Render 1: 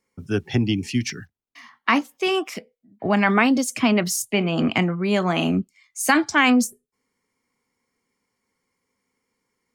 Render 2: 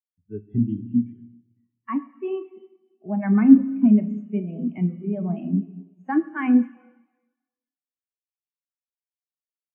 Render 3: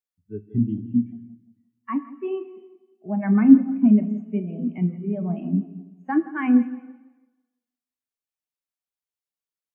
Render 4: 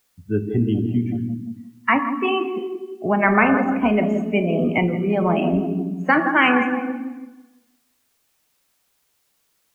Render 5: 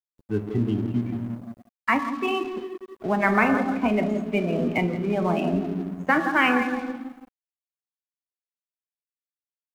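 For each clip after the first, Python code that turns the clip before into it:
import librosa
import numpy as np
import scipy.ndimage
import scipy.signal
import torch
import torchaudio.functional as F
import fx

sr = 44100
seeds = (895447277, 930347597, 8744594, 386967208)

y1 = scipy.signal.medfilt(x, 9)
y1 = fx.rev_schroeder(y1, sr, rt60_s=2.8, comb_ms=26, drr_db=2.5)
y1 = fx.spectral_expand(y1, sr, expansion=2.5)
y1 = y1 * 10.0 ** (1.5 / 20.0)
y2 = fx.echo_tape(y1, sr, ms=168, feedback_pct=35, wet_db=-15.5, lp_hz=2100.0, drive_db=5.0, wow_cents=36)
y3 = fx.spectral_comp(y2, sr, ratio=4.0)
y4 = np.sign(y3) * np.maximum(np.abs(y3) - 10.0 ** (-37.5 / 20.0), 0.0)
y4 = y4 * 10.0 ** (-3.5 / 20.0)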